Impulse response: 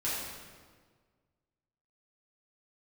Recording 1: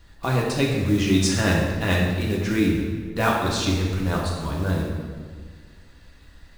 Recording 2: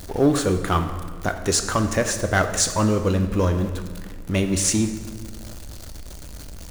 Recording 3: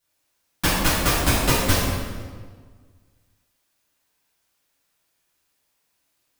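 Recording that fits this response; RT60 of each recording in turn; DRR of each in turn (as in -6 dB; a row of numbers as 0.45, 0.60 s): 3; 1.6, 1.6, 1.6 s; -3.5, 6.5, -10.0 dB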